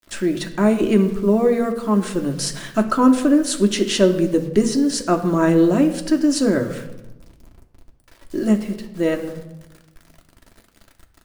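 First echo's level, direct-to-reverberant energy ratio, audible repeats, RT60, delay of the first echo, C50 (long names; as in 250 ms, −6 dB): no echo audible, 3.5 dB, no echo audible, 1.0 s, no echo audible, 11.0 dB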